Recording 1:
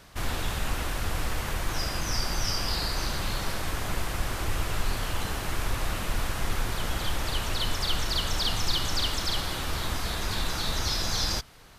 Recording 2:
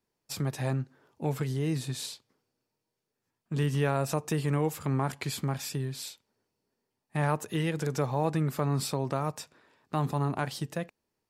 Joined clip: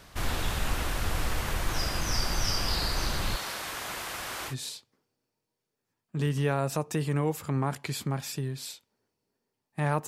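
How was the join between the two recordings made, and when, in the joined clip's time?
recording 1
0:03.36–0:04.55: high-pass filter 740 Hz 6 dB per octave
0:04.51: continue with recording 2 from 0:01.88, crossfade 0.08 s

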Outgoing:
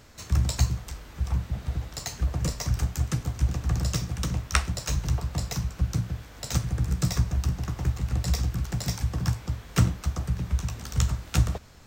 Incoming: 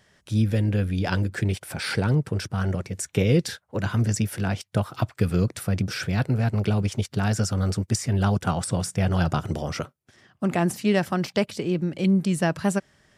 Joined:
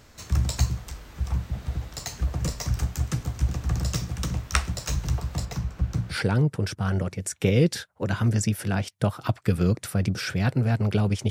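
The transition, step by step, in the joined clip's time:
outgoing
0:05.45–0:06.17: high-shelf EQ 3,400 Hz −9.5 dB
0:06.13: continue with incoming from 0:01.86, crossfade 0.08 s

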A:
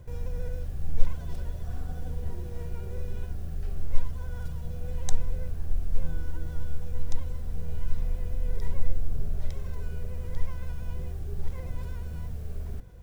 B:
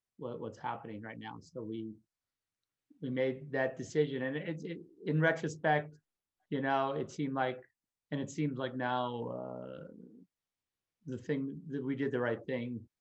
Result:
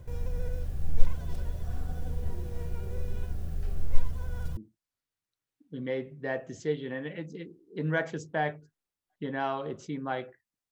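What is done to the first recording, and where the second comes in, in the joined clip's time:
A
0:04.57: continue with B from 0:01.87

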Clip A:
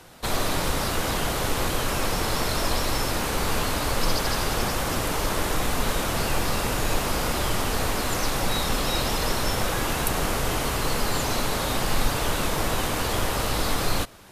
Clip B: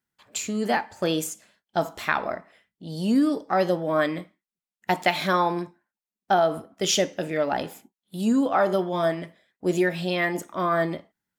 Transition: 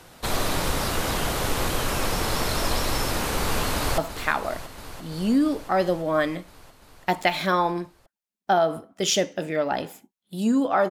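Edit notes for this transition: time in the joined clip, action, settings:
clip A
0:03.41–0:03.98: delay throw 340 ms, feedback 80%, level −13 dB
0:03.98: continue with clip B from 0:01.79

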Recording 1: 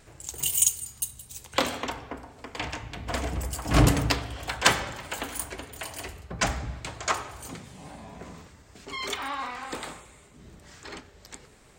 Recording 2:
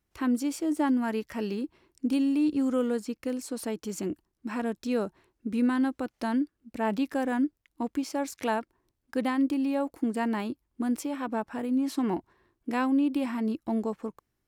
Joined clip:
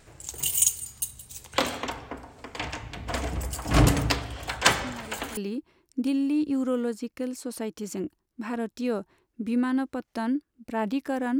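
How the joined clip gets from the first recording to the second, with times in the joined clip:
recording 1
0:04.84: mix in recording 2 from 0:00.90 0.53 s −13 dB
0:05.37: continue with recording 2 from 0:01.43

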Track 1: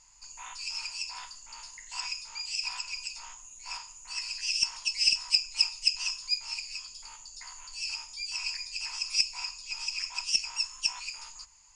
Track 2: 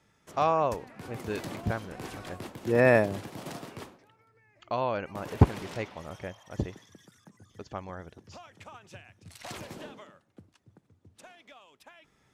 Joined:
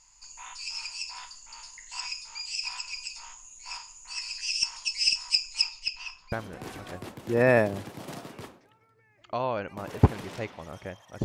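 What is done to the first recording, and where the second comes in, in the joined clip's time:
track 1
0:05.61–0:06.32: low-pass filter 6,500 Hz → 1,600 Hz
0:06.32: continue with track 2 from 0:01.70

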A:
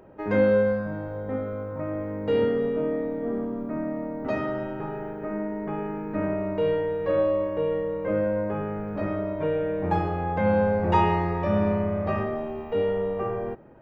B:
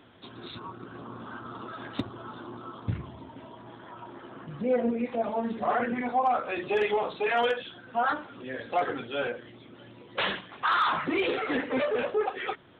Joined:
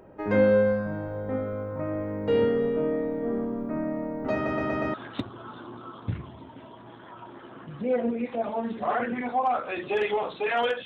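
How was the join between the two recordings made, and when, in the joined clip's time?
A
0:04.34: stutter in place 0.12 s, 5 plays
0:04.94: continue with B from 0:01.74

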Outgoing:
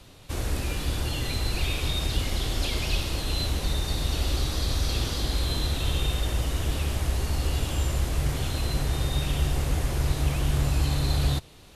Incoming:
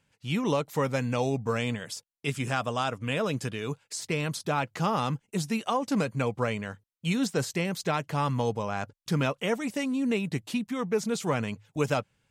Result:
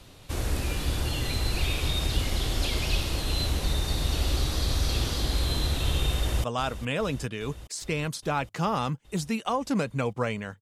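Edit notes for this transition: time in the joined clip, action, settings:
outgoing
0:06.17–0:06.44: delay throw 410 ms, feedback 75%, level −12.5 dB
0:06.44: continue with incoming from 0:02.65

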